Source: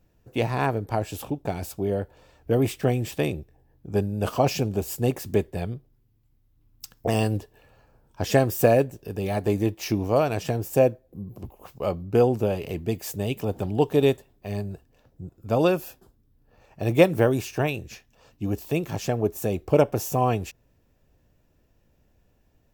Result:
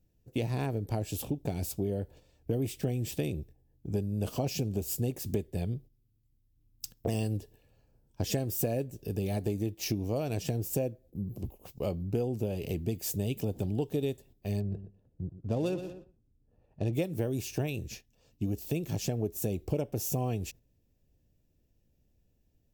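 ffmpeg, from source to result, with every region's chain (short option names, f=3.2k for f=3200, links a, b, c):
-filter_complex "[0:a]asettb=1/sr,asplit=3[a][b][c];[a]atrim=end=14.604[d];[b]atrim=start=14.6:end=16.93,asetpts=PTS-STARTPTS,afade=t=in:d=0.004:c=qsin,afade=t=out:st=2.326:d=0.004:c=qsin,bandreject=f=2.2k:w=8.7,aecho=1:1:120|240|360:0.224|0.0672|0.0201,atrim=end_sample=102753,adynamicsmooth=sensitivity=8:basefreq=1.5k[e];[c]atrim=start=16.926[f];[d][e]acrossfade=d=0.004:c1=hsin:c2=qsin[g];[g][f]acrossfade=d=0.004:c1=qsin:c2=hsin,agate=range=-8dB:threshold=-46dB:ratio=16:detection=peak,equalizer=f=1.2k:w=0.72:g=-14.5,acompressor=threshold=-30dB:ratio=6,volume=2dB"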